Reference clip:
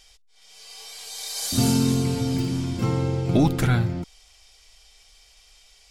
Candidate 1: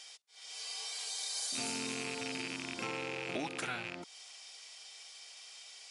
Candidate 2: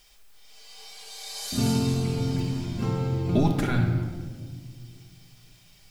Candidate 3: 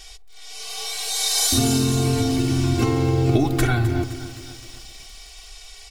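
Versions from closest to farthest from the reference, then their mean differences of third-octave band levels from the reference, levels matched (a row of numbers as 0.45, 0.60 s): 2, 3, 1; 4.5, 7.0, 10.5 dB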